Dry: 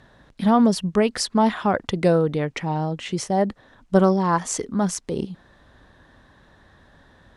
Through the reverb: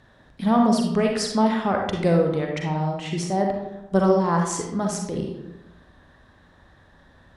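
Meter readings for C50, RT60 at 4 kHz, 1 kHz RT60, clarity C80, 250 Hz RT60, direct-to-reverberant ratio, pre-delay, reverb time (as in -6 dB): 2.5 dB, 0.50 s, 0.85 s, 6.0 dB, 1.1 s, 1.0 dB, 37 ms, 0.90 s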